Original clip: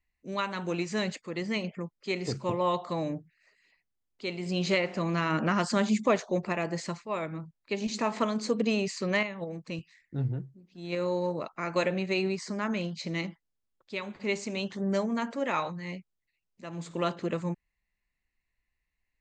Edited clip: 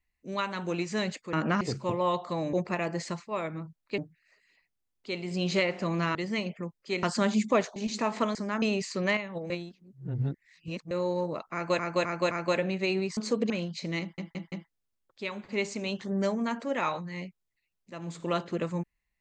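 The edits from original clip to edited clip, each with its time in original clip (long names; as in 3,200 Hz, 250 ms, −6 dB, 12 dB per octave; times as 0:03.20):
0:01.33–0:02.21: swap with 0:05.30–0:05.58
0:06.31–0:07.76: move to 0:03.13
0:08.35–0:08.68: swap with 0:12.45–0:12.72
0:09.56–0:10.97: reverse
0:11.59–0:11.85: repeat, 4 plays
0:13.23: stutter 0.17 s, 4 plays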